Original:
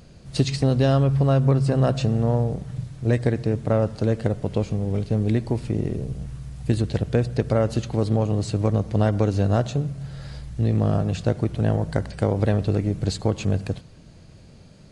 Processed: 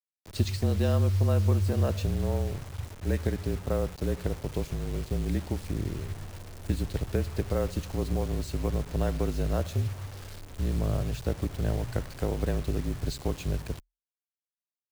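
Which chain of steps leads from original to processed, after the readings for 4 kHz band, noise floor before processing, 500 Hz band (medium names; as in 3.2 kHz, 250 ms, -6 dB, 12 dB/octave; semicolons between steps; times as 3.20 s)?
-5.5 dB, -47 dBFS, -8.5 dB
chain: dynamic bell 150 Hz, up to +6 dB, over -38 dBFS, Q 4.4; word length cut 6-bit, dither none; frequency shift -41 Hz; trim -8 dB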